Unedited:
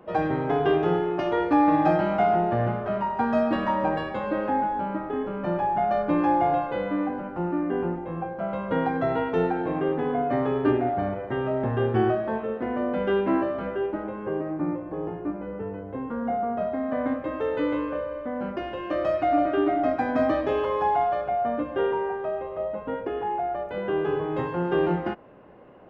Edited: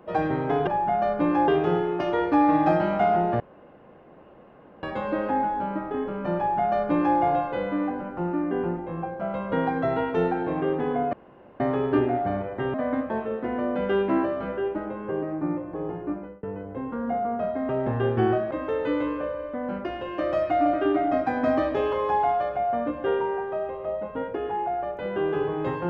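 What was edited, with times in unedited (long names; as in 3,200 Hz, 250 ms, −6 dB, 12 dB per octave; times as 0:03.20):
0:02.59–0:04.02: fill with room tone
0:05.56–0:06.37: duplicate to 0:00.67
0:10.32: splice in room tone 0.47 s
0:11.46–0:12.28: swap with 0:16.87–0:17.23
0:15.33–0:15.61: fade out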